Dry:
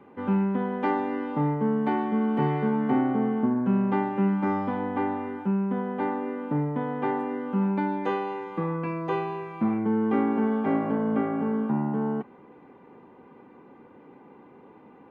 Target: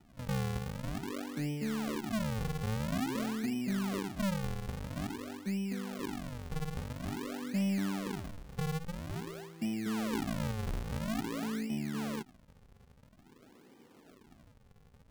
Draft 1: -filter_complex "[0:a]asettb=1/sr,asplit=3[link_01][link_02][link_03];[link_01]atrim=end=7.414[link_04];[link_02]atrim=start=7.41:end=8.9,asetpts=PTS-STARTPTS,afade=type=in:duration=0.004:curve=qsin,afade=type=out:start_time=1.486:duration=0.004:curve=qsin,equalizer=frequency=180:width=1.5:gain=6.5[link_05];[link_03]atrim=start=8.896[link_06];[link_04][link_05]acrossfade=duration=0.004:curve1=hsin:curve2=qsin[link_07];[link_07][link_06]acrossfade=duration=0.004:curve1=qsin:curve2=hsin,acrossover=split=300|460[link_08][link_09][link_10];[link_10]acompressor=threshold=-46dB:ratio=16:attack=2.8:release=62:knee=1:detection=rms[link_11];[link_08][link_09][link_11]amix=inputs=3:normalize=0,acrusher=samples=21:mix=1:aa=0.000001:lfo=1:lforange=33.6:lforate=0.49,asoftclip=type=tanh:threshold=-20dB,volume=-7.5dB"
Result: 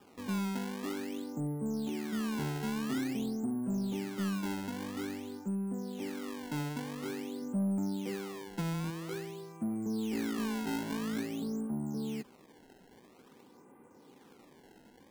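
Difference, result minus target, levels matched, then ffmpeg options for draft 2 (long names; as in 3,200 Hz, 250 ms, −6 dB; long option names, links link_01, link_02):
downward compressor: peak gain reduction −9.5 dB; sample-and-hold swept by an LFO: distortion −13 dB
-filter_complex "[0:a]asettb=1/sr,asplit=3[link_01][link_02][link_03];[link_01]atrim=end=7.414[link_04];[link_02]atrim=start=7.41:end=8.9,asetpts=PTS-STARTPTS,afade=type=in:duration=0.004:curve=qsin,afade=type=out:start_time=1.486:duration=0.004:curve=qsin,equalizer=frequency=180:width=1.5:gain=6.5[link_05];[link_03]atrim=start=8.896[link_06];[link_04][link_05]acrossfade=duration=0.004:curve1=hsin:curve2=qsin[link_07];[link_07][link_06]acrossfade=duration=0.004:curve1=qsin:curve2=hsin,acrossover=split=300|460[link_08][link_09][link_10];[link_10]acompressor=threshold=-56dB:ratio=16:attack=2.8:release=62:knee=1:detection=rms[link_11];[link_08][link_09][link_11]amix=inputs=3:normalize=0,acrusher=samples=79:mix=1:aa=0.000001:lfo=1:lforange=126:lforate=0.49,asoftclip=type=tanh:threshold=-20dB,volume=-7.5dB"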